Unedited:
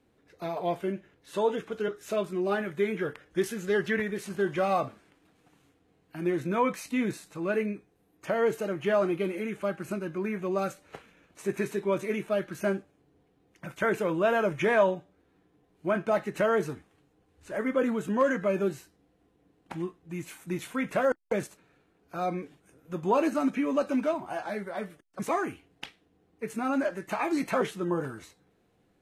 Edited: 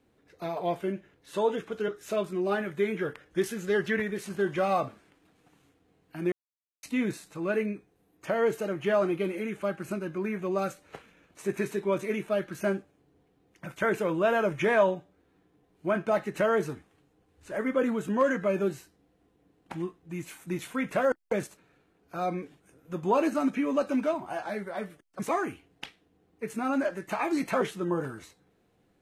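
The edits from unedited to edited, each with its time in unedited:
0:06.32–0:06.83: silence

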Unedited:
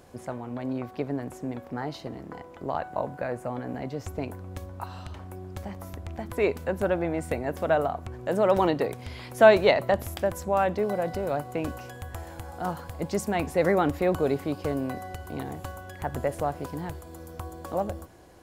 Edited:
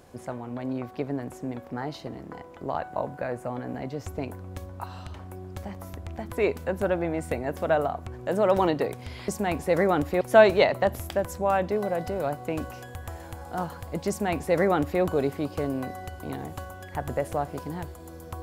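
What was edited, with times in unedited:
0:13.16–0:14.09: duplicate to 0:09.28

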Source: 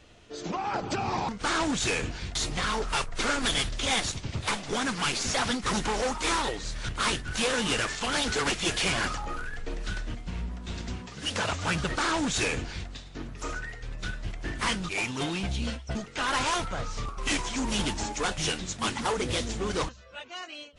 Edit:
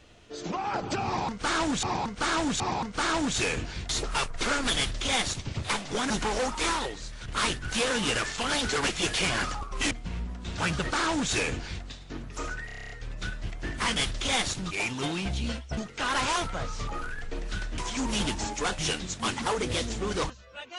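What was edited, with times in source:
0:01.06–0:01.83: repeat, 3 plays
0:02.49–0:02.81: remove
0:03.54–0:04.17: duplicate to 0:14.77
0:04.88–0:05.73: remove
0:06.24–0:06.91: fade out, to −8.5 dB
0:09.24–0:10.13: swap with 0:17.07–0:17.37
0:10.80–0:11.63: remove
0:13.71: stutter 0.03 s, 9 plays

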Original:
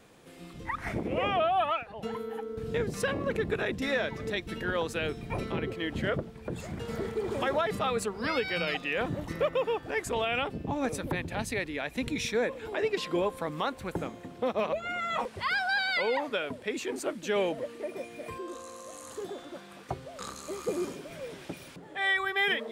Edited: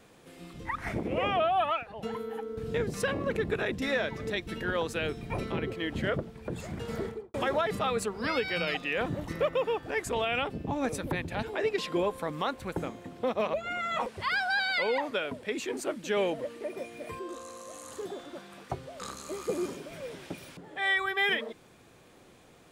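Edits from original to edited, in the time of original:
0:06.99–0:07.34: fade out and dull
0:11.43–0:12.62: remove

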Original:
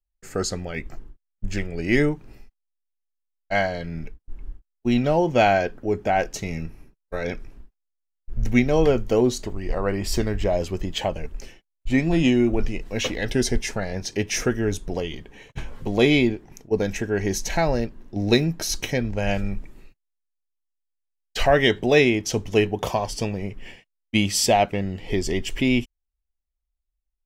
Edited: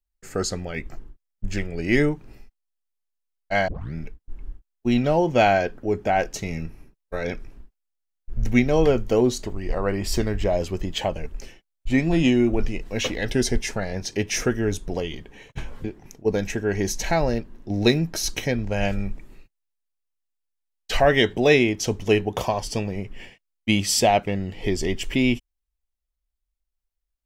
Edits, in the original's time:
0:03.68: tape start 0.26 s
0:15.84–0:16.30: remove

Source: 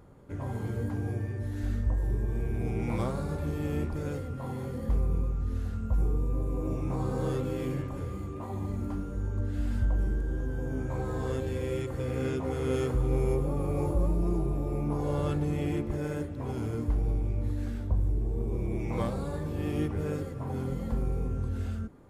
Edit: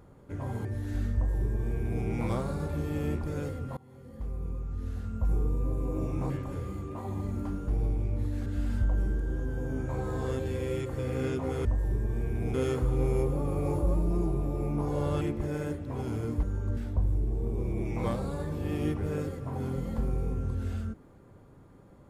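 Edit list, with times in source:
0:00.65–0:01.34: remove
0:01.84–0:02.73: duplicate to 0:12.66
0:04.46–0:06.11: fade in, from −23.5 dB
0:06.99–0:07.75: remove
0:09.13–0:09.47: swap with 0:16.93–0:17.71
0:15.33–0:15.71: remove

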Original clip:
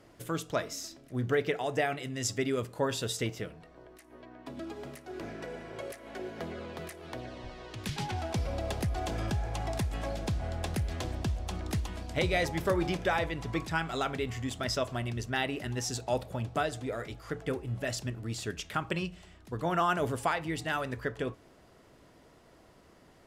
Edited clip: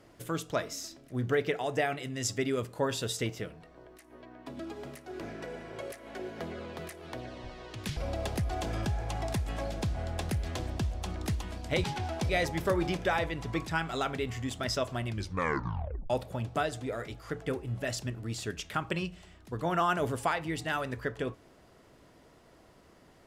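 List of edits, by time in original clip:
0:07.97–0:08.42: move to 0:12.29
0:15.07: tape stop 1.03 s

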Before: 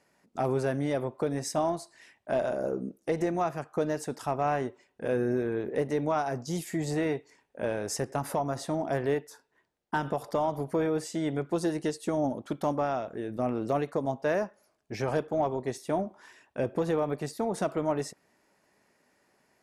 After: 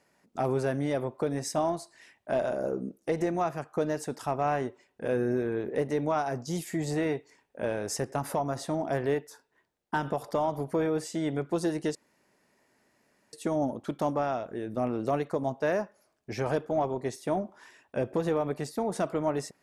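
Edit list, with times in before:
0:11.95: splice in room tone 1.38 s

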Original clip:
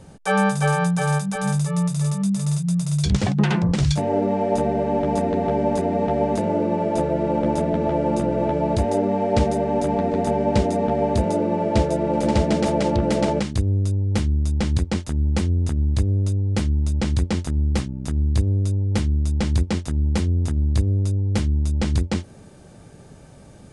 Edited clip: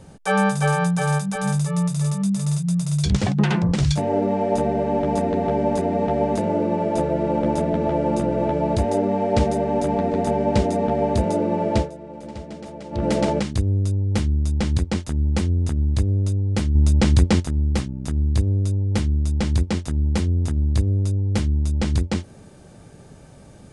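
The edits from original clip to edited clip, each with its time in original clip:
0:11.75–0:13.06: duck −16 dB, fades 0.16 s
0:16.75–0:17.40: clip gain +5.5 dB

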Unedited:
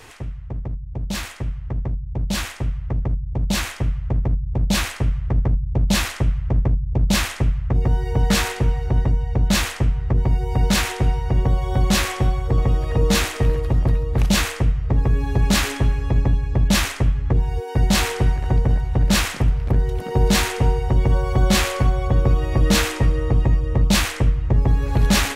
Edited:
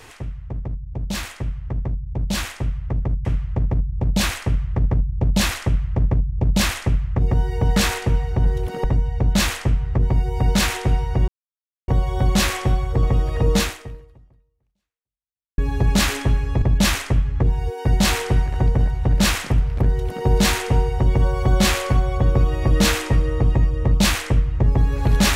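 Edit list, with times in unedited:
0:03.25–0:03.79: remove
0:11.43: splice in silence 0.60 s
0:13.12–0:15.13: fade out exponential
0:16.17–0:16.52: remove
0:19.77–0:20.16: duplicate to 0:08.99

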